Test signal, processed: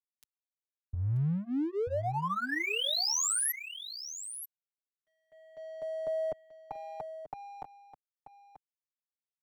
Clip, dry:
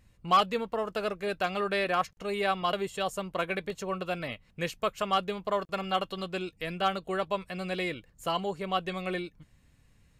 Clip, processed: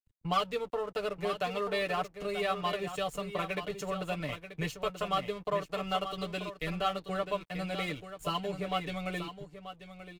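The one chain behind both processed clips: low shelf 160 Hz +5 dB; notch 1600 Hz, Q 14; comb 6.8 ms, depth 85%; dynamic EQ 830 Hz, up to -3 dB, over -37 dBFS, Q 2.2; compressor 2:1, threshold -34 dBFS; crossover distortion -51 dBFS; on a send: echo 0.935 s -8.5 dB; on the sum: three-band expander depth 40%; gain +1 dB

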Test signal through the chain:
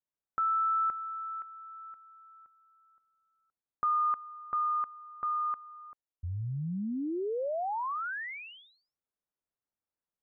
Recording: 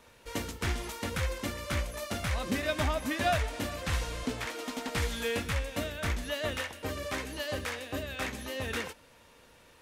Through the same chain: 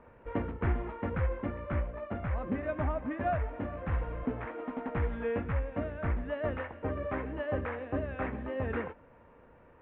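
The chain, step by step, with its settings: Gaussian blur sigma 5.2 samples; vocal rider within 5 dB 2 s; gain +1 dB

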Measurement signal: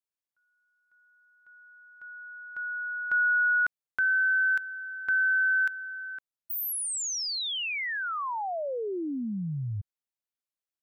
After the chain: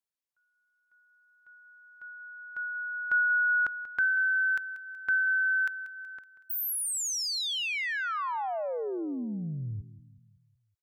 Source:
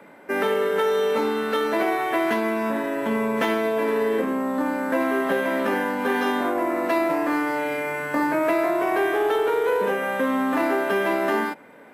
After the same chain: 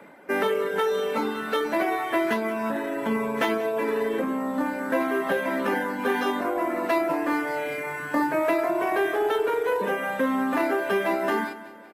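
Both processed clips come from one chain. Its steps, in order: reverb removal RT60 0.9 s; feedback echo 0.187 s, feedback 51%, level -15.5 dB

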